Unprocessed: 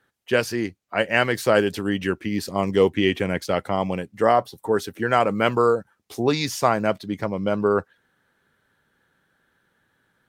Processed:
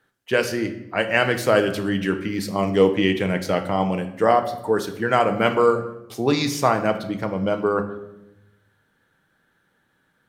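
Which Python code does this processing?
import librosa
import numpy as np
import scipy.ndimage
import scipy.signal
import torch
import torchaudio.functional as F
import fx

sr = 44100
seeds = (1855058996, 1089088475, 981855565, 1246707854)

y = fx.room_shoebox(x, sr, seeds[0], volume_m3=320.0, walls='mixed', distance_m=0.53)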